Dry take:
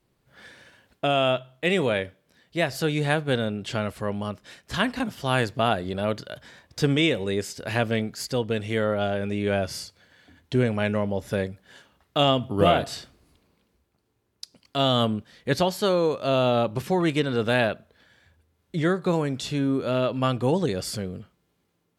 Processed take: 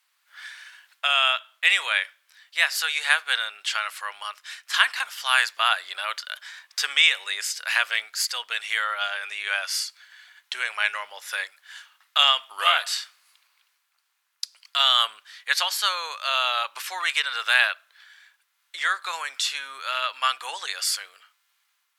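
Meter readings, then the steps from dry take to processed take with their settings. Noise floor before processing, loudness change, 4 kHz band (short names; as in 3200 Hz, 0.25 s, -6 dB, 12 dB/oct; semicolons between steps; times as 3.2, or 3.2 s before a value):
-72 dBFS, +2.0 dB, +8.5 dB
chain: HPF 1200 Hz 24 dB/oct; gain +8.5 dB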